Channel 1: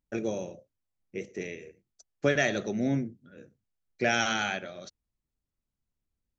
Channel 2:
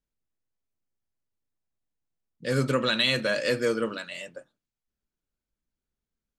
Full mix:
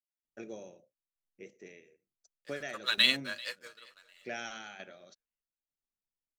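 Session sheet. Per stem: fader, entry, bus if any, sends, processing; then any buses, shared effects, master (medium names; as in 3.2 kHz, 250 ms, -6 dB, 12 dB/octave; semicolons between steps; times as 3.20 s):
-9.5 dB, 0.25 s, no send, no echo send, peaking EQ 61 Hz -13.5 dB 2.3 oct; tremolo saw down 1.1 Hz, depth 65%
+2.5 dB, 0.00 s, no send, echo send -21 dB, high-pass 1.1 kHz 12 dB/octave; crossover distortion -45 dBFS; upward expansion 2.5:1, over -38 dBFS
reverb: none
echo: feedback delay 390 ms, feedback 27%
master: none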